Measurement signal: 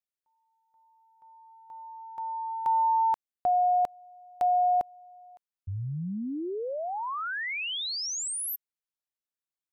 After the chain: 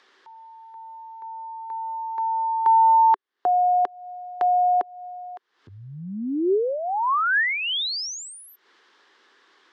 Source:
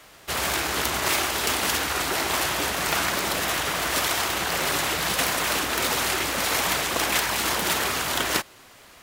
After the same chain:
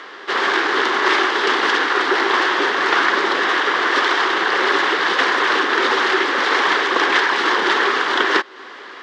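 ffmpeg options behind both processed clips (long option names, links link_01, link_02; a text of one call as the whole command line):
ffmpeg -i in.wav -filter_complex "[0:a]highpass=frequency=290:width=0.5412,highpass=frequency=290:width=1.3066,equalizer=frequency=390:width_type=q:width=4:gain=7,equalizer=frequency=640:width_type=q:width=4:gain=-9,equalizer=frequency=1100:width_type=q:width=4:gain=4,equalizer=frequency=1700:width_type=q:width=4:gain=6,equalizer=frequency=2500:width_type=q:width=4:gain=-7,equalizer=frequency=4200:width_type=q:width=4:gain=-3,lowpass=frequency=4200:width=0.5412,lowpass=frequency=4200:width=1.3066,asplit=2[link_01][link_02];[link_02]acompressor=mode=upward:threshold=-27dB:ratio=2.5:attack=0.41:release=232:knee=2.83:detection=peak,volume=-0.5dB[link_03];[link_01][link_03]amix=inputs=2:normalize=0,volume=2.5dB" out.wav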